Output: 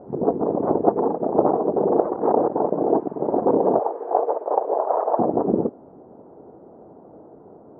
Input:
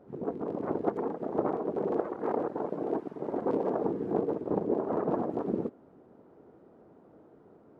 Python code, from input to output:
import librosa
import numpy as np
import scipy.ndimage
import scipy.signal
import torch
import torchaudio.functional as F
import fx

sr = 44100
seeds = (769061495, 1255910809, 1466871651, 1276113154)

p1 = fx.highpass(x, sr, hz=580.0, slope=24, at=(3.79, 5.19))
p2 = fx.rider(p1, sr, range_db=10, speed_s=0.5)
p3 = p1 + (p2 * 10.0 ** (1.0 / 20.0))
p4 = fx.lowpass_res(p3, sr, hz=820.0, q=1.7)
y = p4 * 10.0 ** (3.0 / 20.0)